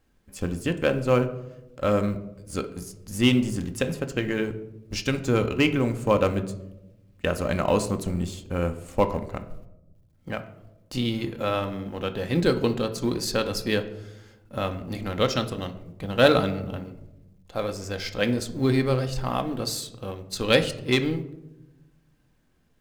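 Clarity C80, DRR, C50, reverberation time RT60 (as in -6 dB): 16.0 dB, 7.0 dB, 13.0 dB, 0.95 s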